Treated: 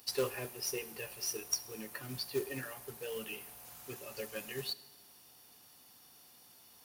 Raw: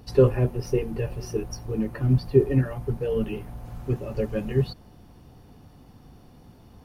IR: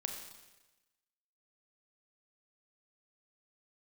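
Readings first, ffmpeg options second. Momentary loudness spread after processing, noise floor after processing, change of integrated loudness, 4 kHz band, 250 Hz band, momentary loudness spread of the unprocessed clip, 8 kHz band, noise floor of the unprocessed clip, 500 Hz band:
21 LU, -60 dBFS, -14.0 dB, +4.5 dB, -20.0 dB, 11 LU, no reading, -52 dBFS, -16.0 dB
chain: -filter_complex "[0:a]aderivative,acrusher=bits=3:mode=log:mix=0:aa=0.000001,asplit=2[s0][s1];[1:a]atrim=start_sample=2205[s2];[s1][s2]afir=irnorm=-1:irlink=0,volume=0.266[s3];[s0][s3]amix=inputs=2:normalize=0,volume=2.11"

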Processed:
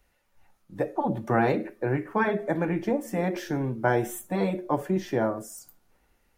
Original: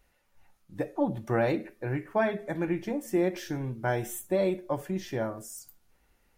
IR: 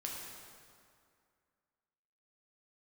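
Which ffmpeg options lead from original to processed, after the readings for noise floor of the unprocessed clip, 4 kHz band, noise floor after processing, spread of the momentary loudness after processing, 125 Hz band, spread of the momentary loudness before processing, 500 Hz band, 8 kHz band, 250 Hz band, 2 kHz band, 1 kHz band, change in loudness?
-69 dBFS, +0.5 dB, -69 dBFS, 6 LU, +3.5 dB, 8 LU, +2.0 dB, 0.0 dB, +3.0 dB, +4.5 dB, +6.5 dB, +3.0 dB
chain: -filter_complex "[0:a]acrossover=split=170|1600[s0][s1][s2];[s1]dynaudnorm=f=120:g=11:m=2.51[s3];[s0][s3][s2]amix=inputs=3:normalize=0,afftfilt=real='re*lt(hypot(re,im),0.794)':imag='im*lt(hypot(re,im),0.794)':win_size=1024:overlap=0.75"

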